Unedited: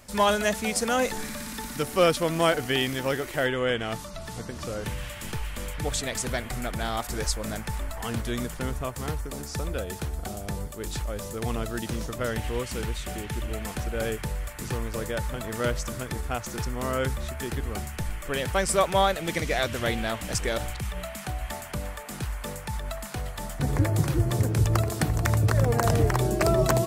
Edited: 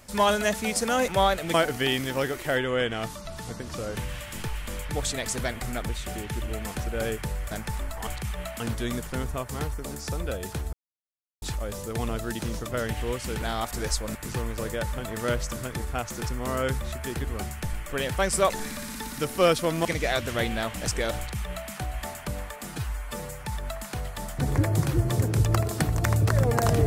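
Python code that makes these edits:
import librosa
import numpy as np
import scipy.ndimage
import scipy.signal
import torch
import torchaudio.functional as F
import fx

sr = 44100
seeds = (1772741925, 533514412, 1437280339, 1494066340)

y = fx.edit(x, sr, fx.swap(start_s=1.08, length_s=1.35, other_s=18.86, other_length_s=0.46),
    fx.swap(start_s=6.78, length_s=0.73, other_s=12.89, other_length_s=1.62),
    fx.silence(start_s=10.2, length_s=0.69),
    fx.duplicate(start_s=20.65, length_s=0.53, to_s=8.07),
    fx.stretch_span(start_s=22.14, length_s=0.52, factor=1.5), tone=tone)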